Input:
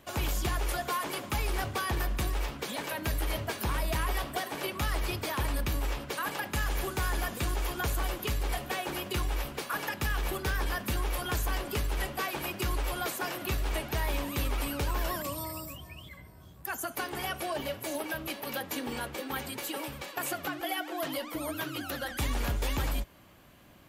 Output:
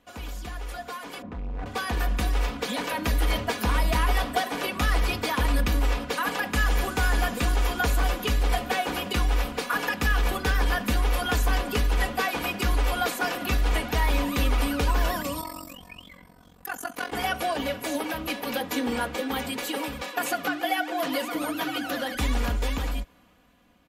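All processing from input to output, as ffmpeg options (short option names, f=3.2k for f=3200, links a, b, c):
-filter_complex "[0:a]asettb=1/sr,asplit=3[a][b][c];[a]atrim=end=1.224[d];[b]atrim=start=1.22:end=1.66,asetpts=PTS-STARTPTS,afade=t=in:d=0.004:c=qsin,afade=t=out:st=0.436:d=0.004:c=qsin,lowpass=2k,tiltshelf=f=650:g=9,asoftclip=type=hard:threshold=-32dB[e];[c]atrim=start=1.656[f];[d][e]acrossfade=d=0.004:c1=hsin:c2=qsin[g];[g][f]acrossfade=d=0.004:c1=qsin:c2=hsin,asettb=1/sr,asplit=3[h][i][j];[h]atrim=end=15.414[k];[i]atrim=start=15.41:end=17.12,asetpts=PTS-STARTPTS,afade=t=in:d=0.004:c=qsin,afade=t=out:st=1.706:d=0.004:c=qsin,highpass=f=140:p=1,tremolo=f=45:d=0.974[l];[j]atrim=start=17.116[m];[k][l]acrossfade=d=0.004:c1=hsin:c2=qsin[n];[n][m]acrossfade=d=0.004:c1=qsin:c2=hsin,asettb=1/sr,asplit=3[o][p][q];[o]atrim=end=20.024[r];[p]atrim=start=20.02:end=22.15,asetpts=PTS-STARTPTS,afade=t=in:d=0.004:c=qsin,afade=t=out:st=2.126:d=0.004:c=qsin,highpass=150,aecho=1:1:967:0.316,atrim=end_sample=93933[s];[q]atrim=start=22.146[t];[r][s]acrossfade=d=0.004:c1=hsin:c2=qsin[u];[u][t]acrossfade=d=0.004:c1=qsin:c2=hsin,highshelf=f=9.3k:g=-9.5,aecho=1:1:4.1:0.62,dynaudnorm=f=510:g=7:m=13dB,volume=-7dB"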